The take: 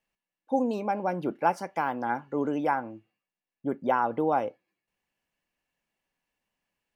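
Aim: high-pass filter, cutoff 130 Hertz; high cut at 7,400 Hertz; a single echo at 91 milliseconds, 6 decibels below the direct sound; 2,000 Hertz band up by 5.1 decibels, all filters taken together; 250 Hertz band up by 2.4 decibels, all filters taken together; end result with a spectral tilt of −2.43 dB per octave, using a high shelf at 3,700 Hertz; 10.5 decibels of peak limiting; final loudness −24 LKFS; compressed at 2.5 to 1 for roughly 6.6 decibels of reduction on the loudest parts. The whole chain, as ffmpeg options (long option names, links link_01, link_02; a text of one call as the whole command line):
ffmpeg -i in.wav -af "highpass=130,lowpass=7400,equalizer=frequency=250:width_type=o:gain=3,equalizer=frequency=2000:width_type=o:gain=6.5,highshelf=frequency=3700:gain=4.5,acompressor=threshold=-28dB:ratio=2.5,alimiter=level_in=2dB:limit=-24dB:level=0:latency=1,volume=-2dB,aecho=1:1:91:0.501,volume=11.5dB" out.wav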